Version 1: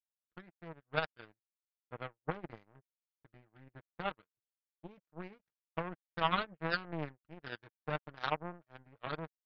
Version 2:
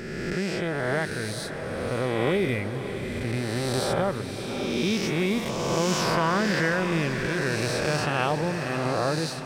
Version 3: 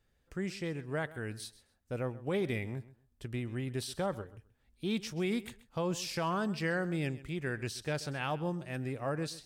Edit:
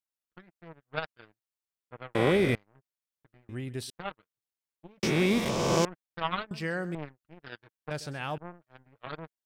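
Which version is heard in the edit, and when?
1
2.15–2.55 s: from 2
3.49–3.90 s: from 3
5.03–5.85 s: from 2
6.51–6.95 s: from 3
7.91–8.38 s: from 3

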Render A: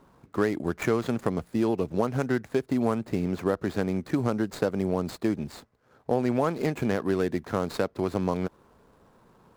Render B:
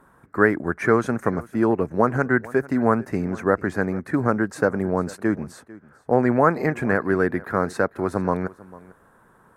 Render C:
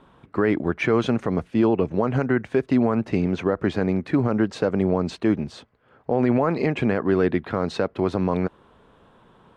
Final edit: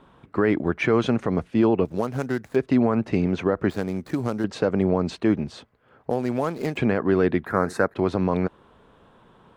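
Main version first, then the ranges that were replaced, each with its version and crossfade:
C
1.85–2.56 s: from A
3.70–4.44 s: from A
6.10–6.77 s: from A
7.46–7.94 s: from B

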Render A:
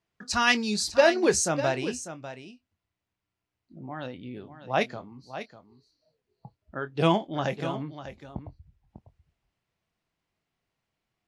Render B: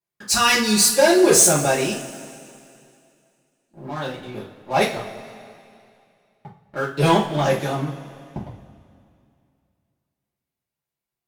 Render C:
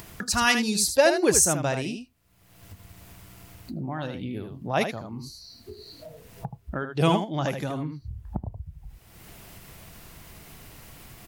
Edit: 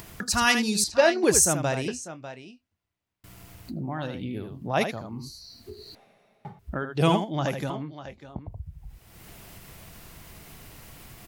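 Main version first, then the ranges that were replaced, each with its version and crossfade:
C
0.84–1.24 s: from A
1.88–3.24 s: from A
5.95–6.59 s: from B
7.70–8.48 s: from A

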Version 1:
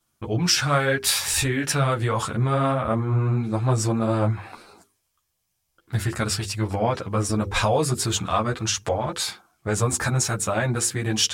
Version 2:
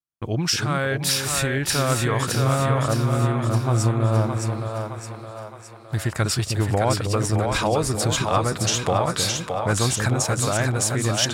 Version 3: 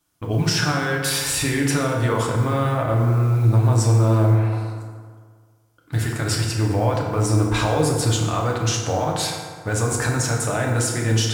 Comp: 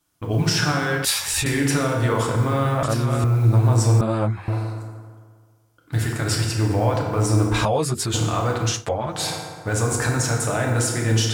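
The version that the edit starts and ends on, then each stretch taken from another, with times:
3
1.05–1.46 s: from 1
2.83–3.24 s: from 2
4.01–4.48 s: from 1
7.65–8.14 s: from 1
8.75–9.18 s: from 1, crossfade 0.24 s

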